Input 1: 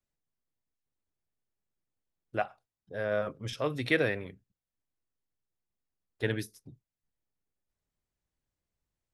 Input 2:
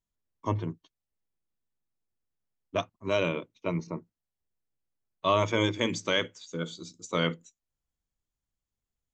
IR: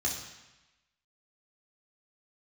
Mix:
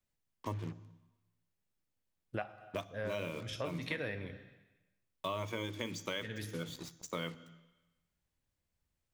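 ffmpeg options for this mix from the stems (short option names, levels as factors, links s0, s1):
-filter_complex "[0:a]volume=1.26,asplit=2[s0][s1];[s1]volume=0.133[s2];[1:a]acrusher=bits=6:mix=0:aa=0.5,volume=0.668,asplit=3[s3][s4][s5];[s4]volume=0.0944[s6];[s5]apad=whole_len=402650[s7];[s0][s7]sidechaincompress=threshold=0.0141:ratio=8:attack=32:release=488[s8];[2:a]atrim=start_sample=2205[s9];[s2][s6]amix=inputs=2:normalize=0[s10];[s10][s9]afir=irnorm=-1:irlink=0[s11];[s8][s3][s11]amix=inputs=3:normalize=0,acompressor=threshold=0.0158:ratio=4"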